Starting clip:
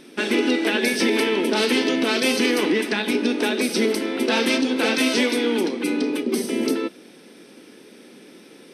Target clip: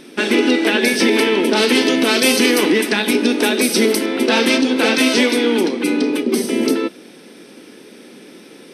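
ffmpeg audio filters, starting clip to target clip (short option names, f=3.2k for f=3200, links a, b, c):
-filter_complex "[0:a]asettb=1/sr,asplit=3[a][b][c];[a]atrim=end=1.754[d];[b]atrim=start=1.75:end=4.06,asetpts=PTS-STARTPTS,afade=t=in:d=0.004:c=qsin,afade=t=out:st=2.306:d=0.004:c=qsin,highshelf=f=9k:g=11[e];[c]atrim=start=4.056[f];[d][e]acrossfade=d=0.004:c1=hsin:c2=qsin[g];[g][f]acrossfade=d=0.004:c1=qsin:c2=hsin,volume=5.5dB"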